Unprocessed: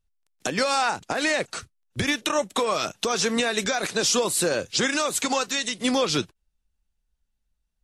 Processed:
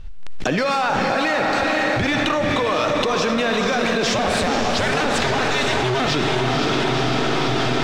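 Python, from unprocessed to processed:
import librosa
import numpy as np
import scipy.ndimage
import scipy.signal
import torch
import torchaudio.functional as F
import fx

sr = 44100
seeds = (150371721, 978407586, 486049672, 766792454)

y = fx.cycle_switch(x, sr, every=2, mode='inverted', at=(4.07, 6.07))
y = scipy.signal.sosfilt(scipy.signal.butter(2, 3500.0, 'lowpass', fs=sr, output='sos'), y)
y = fx.low_shelf(y, sr, hz=66.0, db=9.0)
y = fx.leveller(y, sr, passes=1)
y = fx.echo_diffused(y, sr, ms=503, feedback_pct=49, wet_db=-4.0)
y = fx.rev_freeverb(y, sr, rt60_s=2.1, hf_ratio=0.6, predelay_ms=20, drr_db=8.0)
y = fx.env_flatten(y, sr, amount_pct=100)
y = y * 10.0 ** (-3.0 / 20.0)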